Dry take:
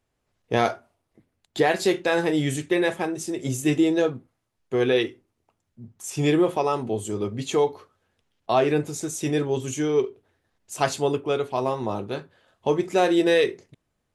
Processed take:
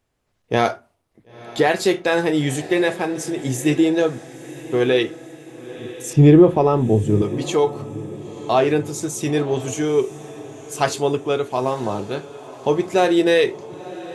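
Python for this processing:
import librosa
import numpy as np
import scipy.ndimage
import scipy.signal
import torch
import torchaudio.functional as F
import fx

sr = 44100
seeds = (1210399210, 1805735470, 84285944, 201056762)

p1 = fx.tilt_eq(x, sr, slope=-4.0, at=(6.13, 7.22))
p2 = p1 + fx.echo_diffused(p1, sr, ms=987, feedback_pct=51, wet_db=-16.0, dry=0)
y = p2 * 10.0 ** (3.5 / 20.0)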